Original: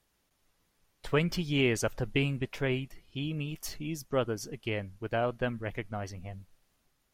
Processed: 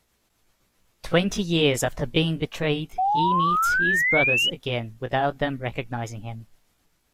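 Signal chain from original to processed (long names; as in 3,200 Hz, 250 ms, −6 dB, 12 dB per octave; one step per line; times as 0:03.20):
pitch shift by two crossfaded delay taps +2.5 semitones
sound drawn into the spectrogram rise, 0:02.98–0:04.50, 730–3,000 Hz −29 dBFS
level +7.5 dB
AC-3 96 kbit/s 32,000 Hz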